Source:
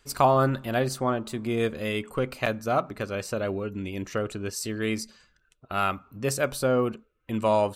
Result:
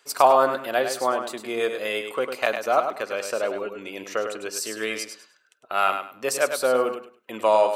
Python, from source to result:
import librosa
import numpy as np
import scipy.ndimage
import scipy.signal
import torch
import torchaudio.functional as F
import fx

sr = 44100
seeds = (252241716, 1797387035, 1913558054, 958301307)

y = scipy.signal.sosfilt(scipy.signal.cheby1(2, 1.0, 540.0, 'highpass', fs=sr, output='sos'), x)
y = fx.echo_feedback(y, sr, ms=102, feedback_pct=23, wet_db=-7.5)
y = y * 10.0 ** (4.5 / 20.0)